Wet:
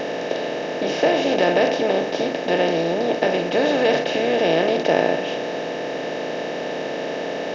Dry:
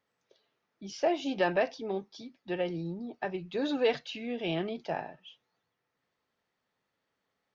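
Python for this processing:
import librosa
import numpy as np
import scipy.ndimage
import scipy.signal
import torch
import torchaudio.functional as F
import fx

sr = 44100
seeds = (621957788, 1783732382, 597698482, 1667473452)

y = fx.bin_compress(x, sr, power=0.2)
y = F.gain(torch.from_numpy(y), 3.5).numpy()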